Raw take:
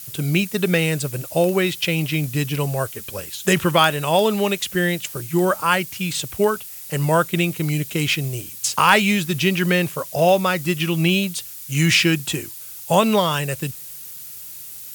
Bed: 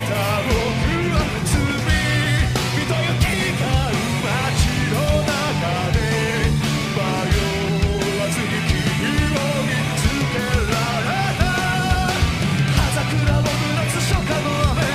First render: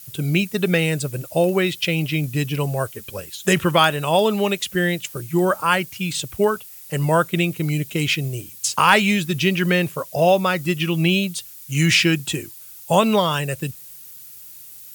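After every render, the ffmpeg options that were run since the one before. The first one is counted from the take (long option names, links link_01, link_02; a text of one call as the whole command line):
ffmpeg -i in.wav -af "afftdn=noise_reduction=6:noise_floor=-36" out.wav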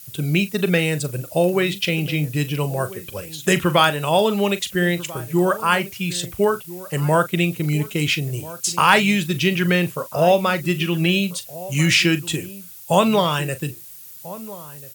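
ffmpeg -i in.wav -filter_complex "[0:a]asplit=2[link_01][link_02];[link_02]adelay=40,volume=-13.5dB[link_03];[link_01][link_03]amix=inputs=2:normalize=0,asplit=2[link_04][link_05];[link_05]adelay=1341,volume=-17dB,highshelf=frequency=4000:gain=-30.2[link_06];[link_04][link_06]amix=inputs=2:normalize=0" out.wav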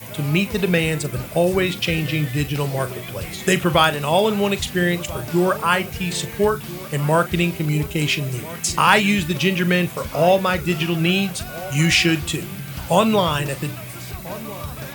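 ffmpeg -i in.wav -i bed.wav -filter_complex "[1:a]volume=-14.5dB[link_01];[0:a][link_01]amix=inputs=2:normalize=0" out.wav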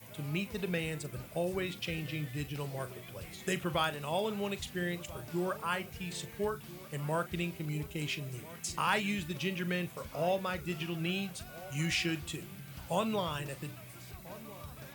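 ffmpeg -i in.wav -af "volume=-16dB" out.wav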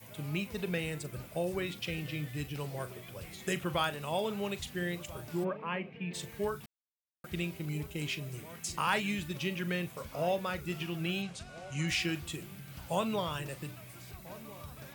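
ffmpeg -i in.wav -filter_complex "[0:a]asplit=3[link_01][link_02][link_03];[link_01]afade=type=out:start_time=5.43:duration=0.02[link_04];[link_02]highpass=frequency=150:width=0.5412,highpass=frequency=150:width=1.3066,equalizer=frequency=180:width_type=q:width=4:gain=4,equalizer=frequency=260:width_type=q:width=4:gain=5,equalizer=frequency=470:width_type=q:width=4:gain=4,equalizer=frequency=770:width_type=q:width=4:gain=-3,equalizer=frequency=1400:width_type=q:width=4:gain=-10,equalizer=frequency=2500:width_type=q:width=4:gain=4,lowpass=frequency=2600:width=0.5412,lowpass=frequency=2600:width=1.3066,afade=type=in:start_time=5.43:duration=0.02,afade=type=out:start_time=6.13:duration=0.02[link_05];[link_03]afade=type=in:start_time=6.13:duration=0.02[link_06];[link_04][link_05][link_06]amix=inputs=3:normalize=0,asettb=1/sr,asplit=3[link_07][link_08][link_09];[link_07]atrim=end=11.224[link_10];[link_08]atrim=start=11.22:end=11.88,asetpts=PTS-STARTPTS,afade=type=in:duration=0.004:curve=qsin,afade=type=out:start_time=0.656:duration=0.004:curve=qsin,lowpass=frequency=8300:width=0.5412,lowpass=frequency=8300:width=1.3066[link_11];[link_09]atrim=start=11.876[link_12];[link_10][link_11]acrossfade=duration=0.004:curve1=hsin:curve2=qsin[link_13];[link_13][link_12]acrossfade=duration=0.004:curve1=qsin:curve2=hsin,asplit=3[link_14][link_15][link_16];[link_14]atrim=end=6.66,asetpts=PTS-STARTPTS,afade=type=out:start_time=6.656:duration=0.004:curve=hsin[link_17];[link_15]atrim=start=6.66:end=7.24,asetpts=PTS-STARTPTS,volume=0[link_18];[link_16]atrim=start=7.24,asetpts=PTS-STARTPTS,afade=type=in:duration=0.004:curve=hsin[link_19];[link_17][link_18][link_19]concat=n=3:v=0:a=1" out.wav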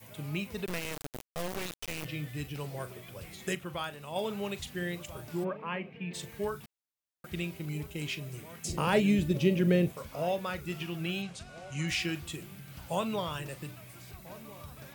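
ffmpeg -i in.wav -filter_complex "[0:a]asettb=1/sr,asplit=3[link_01][link_02][link_03];[link_01]atrim=end=0.664[link_04];[link_02]atrim=start=0.66:end=2.05,asetpts=PTS-STARTPTS,afade=type=in:duration=0.004:curve=qsin,afade=type=out:start_time=1.386:duration=0.004:curve=qsin,acrusher=bits=3:dc=4:mix=0:aa=0.000001[link_05];[link_03]atrim=start=2.046[link_06];[link_04][link_05]acrossfade=duration=0.004:curve1=hsin:curve2=qsin[link_07];[link_07][link_06]acrossfade=duration=0.004:curve1=qsin:curve2=hsin,asettb=1/sr,asplit=3[link_08][link_09][link_10];[link_08]atrim=end=8.654[link_11];[link_09]atrim=start=8.65:end=9.92,asetpts=PTS-STARTPTS,afade=type=in:duration=0.004:curve=qsin,afade=type=out:start_time=1.266:duration=0.004:curve=qsin,lowshelf=frequency=740:width_type=q:width=1.5:gain=9.5[link_12];[link_10]atrim=start=9.916[link_13];[link_11][link_12]acrossfade=duration=0.004:curve1=hsin:curve2=qsin[link_14];[link_14][link_13]acrossfade=duration=0.004:curve1=qsin:curve2=hsin,asplit=3[link_15][link_16][link_17];[link_15]atrim=end=3.552[link_18];[link_16]atrim=start=3.548:end=4.162,asetpts=PTS-STARTPTS,volume=-5.5dB[link_19];[link_17]atrim=start=4.158[link_20];[link_18][link_19]acrossfade=duration=0.004:curve1=hsin:curve2=hsin[link_21];[link_21][link_20]acrossfade=duration=0.004:curve1=hsin:curve2=hsin" out.wav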